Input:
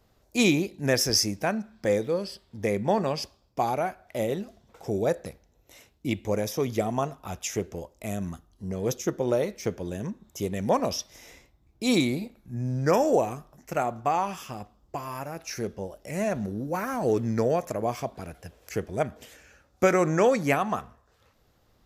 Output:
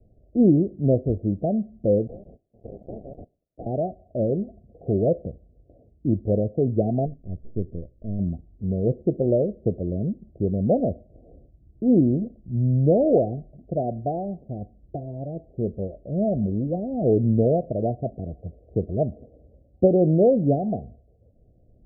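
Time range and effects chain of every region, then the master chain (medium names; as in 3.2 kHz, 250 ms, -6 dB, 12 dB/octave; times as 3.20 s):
2.07–3.66 s: square wave that keeps the level + differentiator + decimation joined by straight lines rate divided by 2×
7.06–8.19 s: partial rectifier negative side -7 dB + Gaussian low-pass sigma 17 samples + hum notches 60/120 Hz
whole clip: steep low-pass 710 Hz 96 dB/octave; bass shelf 250 Hz +8.5 dB; trim +2 dB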